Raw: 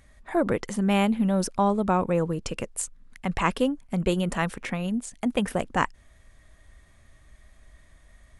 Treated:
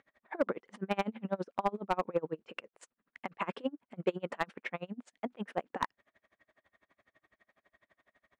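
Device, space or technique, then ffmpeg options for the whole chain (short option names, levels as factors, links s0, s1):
helicopter radio: -af "highpass=320,lowpass=2500,aeval=exprs='val(0)*pow(10,-32*(0.5-0.5*cos(2*PI*12*n/s))/20)':c=same,asoftclip=type=hard:threshold=0.1"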